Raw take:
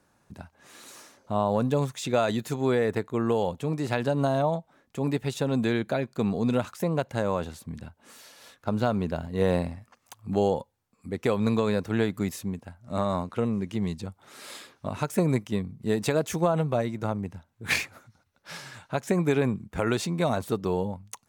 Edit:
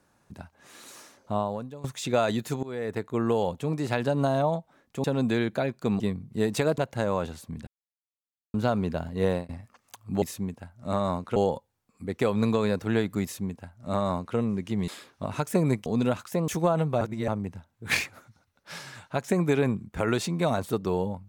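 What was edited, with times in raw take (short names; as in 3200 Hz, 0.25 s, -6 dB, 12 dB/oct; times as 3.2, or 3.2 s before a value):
1.33–1.84 fade out quadratic, to -19.5 dB
2.63–3.14 fade in, from -20.5 dB
5.04–5.38 cut
6.34–6.96 swap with 15.49–16.27
7.85–8.72 mute
9.35–9.67 fade out equal-power
12.27–13.41 copy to 10.4
13.92–14.51 cut
16.8–17.07 reverse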